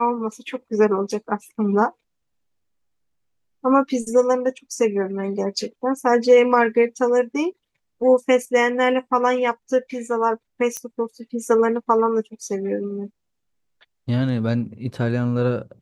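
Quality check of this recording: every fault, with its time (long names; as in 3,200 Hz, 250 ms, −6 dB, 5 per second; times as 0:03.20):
0:10.77: click −13 dBFS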